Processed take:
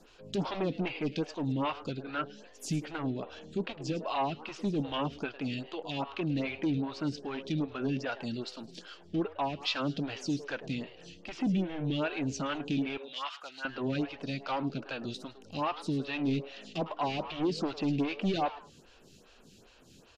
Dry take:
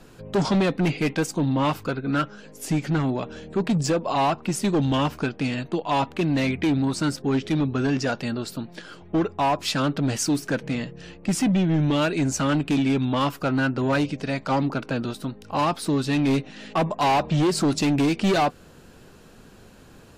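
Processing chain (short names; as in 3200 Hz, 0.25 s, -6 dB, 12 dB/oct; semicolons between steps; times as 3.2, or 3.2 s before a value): 12.97–13.65 Chebyshev high-pass 1200 Hz, order 2; treble ducked by the level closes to 2600 Hz, closed at -20 dBFS; band shelf 4200 Hz +9.5 dB; on a send: frequency-shifting echo 0.106 s, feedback 36%, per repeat +140 Hz, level -16.5 dB; on the sum: photocell phaser 2.5 Hz; gain -7.5 dB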